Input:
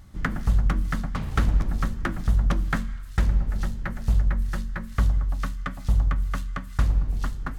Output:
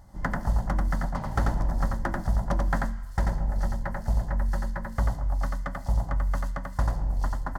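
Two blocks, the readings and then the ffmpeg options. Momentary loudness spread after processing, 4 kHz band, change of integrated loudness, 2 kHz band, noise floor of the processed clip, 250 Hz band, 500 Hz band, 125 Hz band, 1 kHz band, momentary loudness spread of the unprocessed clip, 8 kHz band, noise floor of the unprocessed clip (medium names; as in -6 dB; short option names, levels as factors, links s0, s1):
4 LU, -6.5 dB, -2.5 dB, -2.5 dB, -38 dBFS, -2.0 dB, +4.5 dB, -3.0 dB, +2.0 dB, 7 LU, no reading, -38 dBFS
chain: -af "superequalizer=8b=2.82:9b=3.16:12b=0.316:13b=0.447,aecho=1:1:89:0.708,volume=0.631"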